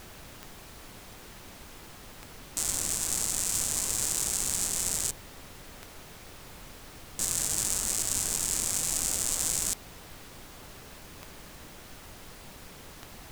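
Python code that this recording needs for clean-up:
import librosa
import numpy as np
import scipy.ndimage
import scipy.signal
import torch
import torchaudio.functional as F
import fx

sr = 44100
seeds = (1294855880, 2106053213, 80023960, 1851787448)

y = fx.fix_declick_ar(x, sr, threshold=10.0)
y = fx.noise_reduce(y, sr, print_start_s=0.92, print_end_s=1.42, reduce_db=30.0)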